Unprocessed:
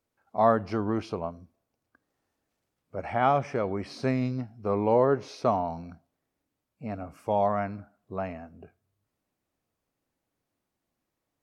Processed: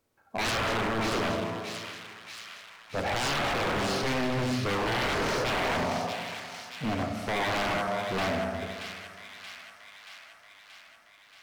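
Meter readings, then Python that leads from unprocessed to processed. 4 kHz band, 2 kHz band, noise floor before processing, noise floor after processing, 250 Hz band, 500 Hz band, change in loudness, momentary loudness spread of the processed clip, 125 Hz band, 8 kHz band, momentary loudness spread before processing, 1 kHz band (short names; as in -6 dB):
+17.0 dB, +11.0 dB, -84 dBFS, -58 dBFS, -1.0 dB, -3.5 dB, -1.5 dB, 16 LU, -0.5 dB, n/a, 16 LU, -1.5 dB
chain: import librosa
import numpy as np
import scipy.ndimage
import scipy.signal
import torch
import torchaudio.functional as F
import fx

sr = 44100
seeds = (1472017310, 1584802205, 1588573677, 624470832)

p1 = fx.dynamic_eq(x, sr, hz=1600.0, q=1.8, threshold_db=-45.0, ratio=4.0, max_db=8)
p2 = fx.rev_schroeder(p1, sr, rt60_s=2.0, comb_ms=28, drr_db=4.0)
p3 = fx.over_compress(p2, sr, threshold_db=-29.0, ratio=-0.5)
p4 = p2 + (p3 * 10.0 ** (-3.0 / 20.0))
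p5 = 10.0 ** (-23.5 / 20.0) * (np.abs((p4 / 10.0 ** (-23.5 / 20.0) + 3.0) % 4.0 - 2.0) - 1.0)
p6 = p5 + fx.echo_wet_highpass(p5, sr, ms=629, feedback_pct=66, hz=2100.0, wet_db=-5.0, dry=0)
y = fx.end_taper(p6, sr, db_per_s=170.0)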